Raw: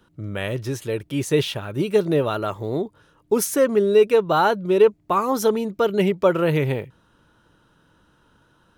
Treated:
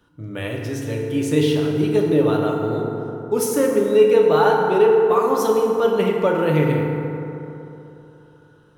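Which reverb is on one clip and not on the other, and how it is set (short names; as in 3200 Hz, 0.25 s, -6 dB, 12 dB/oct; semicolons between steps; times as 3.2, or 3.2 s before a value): FDN reverb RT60 3.2 s, high-frequency decay 0.4×, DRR -1 dB; gain -3 dB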